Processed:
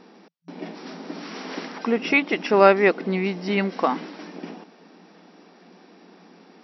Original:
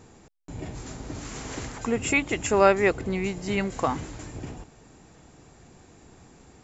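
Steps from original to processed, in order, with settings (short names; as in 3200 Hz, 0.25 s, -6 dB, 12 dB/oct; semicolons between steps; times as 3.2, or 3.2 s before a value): FFT band-pass 170–5800 Hz; gain +4 dB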